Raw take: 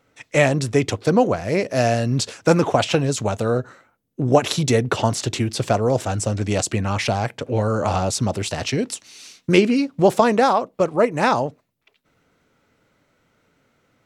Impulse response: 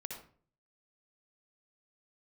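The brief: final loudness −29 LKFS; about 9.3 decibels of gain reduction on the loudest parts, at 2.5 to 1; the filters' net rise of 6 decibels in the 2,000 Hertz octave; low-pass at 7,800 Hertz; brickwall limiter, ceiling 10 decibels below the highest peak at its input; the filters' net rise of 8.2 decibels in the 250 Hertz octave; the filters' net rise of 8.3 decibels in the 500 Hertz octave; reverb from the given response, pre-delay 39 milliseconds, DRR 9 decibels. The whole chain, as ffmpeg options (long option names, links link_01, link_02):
-filter_complex "[0:a]lowpass=7800,equalizer=frequency=250:width_type=o:gain=8,equalizer=frequency=500:width_type=o:gain=7.5,equalizer=frequency=2000:width_type=o:gain=7,acompressor=threshold=-16dB:ratio=2.5,alimiter=limit=-11.5dB:level=0:latency=1,asplit=2[link_01][link_02];[1:a]atrim=start_sample=2205,adelay=39[link_03];[link_02][link_03]afir=irnorm=-1:irlink=0,volume=-7.5dB[link_04];[link_01][link_04]amix=inputs=2:normalize=0,volume=-7dB"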